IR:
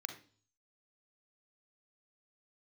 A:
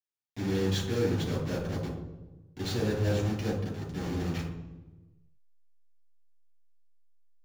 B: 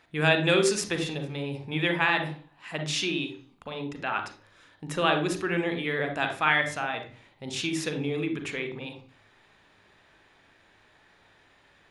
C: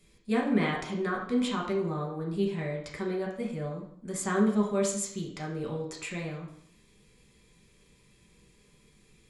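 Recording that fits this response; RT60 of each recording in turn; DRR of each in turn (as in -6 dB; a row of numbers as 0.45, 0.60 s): B; 1.1, 0.45, 0.65 s; -7.0, 6.0, -2.5 dB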